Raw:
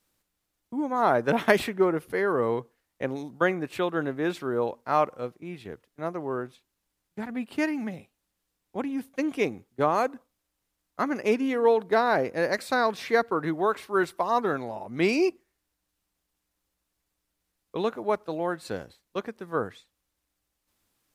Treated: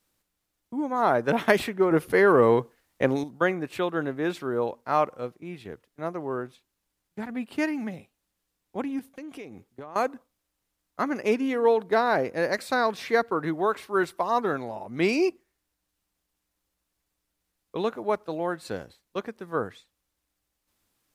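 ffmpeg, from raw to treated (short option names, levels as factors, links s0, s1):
-filter_complex "[0:a]asettb=1/sr,asplit=3[s0][s1][s2];[s0]atrim=end=1.914[s3];[s1]atrim=start=1.91:end=3.24,asetpts=PTS-STARTPTS,afade=t=in:d=0.004:c=qsin,afade=t=out:st=1.326:d=0.004:c=qsin,acontrast=89[s4];[s2]atrim=start=3.236[s5];[s3][s4]acrossfade=d=0.004:c1=hsin:c2=qsin[s6];[s6][s5]acrossfade=d=0.004:c1=qsin:c2=hsin,asettb=1/sr,asplit=3[s7][s8][s9];[s7]atrim=end=8.994[s10];[s8]atrim=start=8.99:end=9.96,asetpts=PTS-STARTPTS,afade=t=in:d=0.004:c=qsin,afade=t=out:st=0.966:d=0.004:c=qsin,acompressor=threshold=0.0141:ratio=8:attack=3.2:release=140:knee=1:detection=peak[s11];[s9]atrim=start=9.956[s12];[s10][s11]acrossfade=d=0.004:c1=hsin:c2=qsin[s13];[s13][s12]acrossfade=d=0.004:c1=qsin:c2=hsin"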